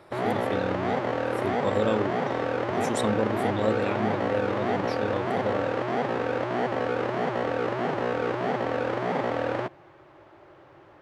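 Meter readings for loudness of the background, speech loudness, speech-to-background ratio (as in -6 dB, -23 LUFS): -28.0 LUFS, -31.5 LUFS, -3.5 dB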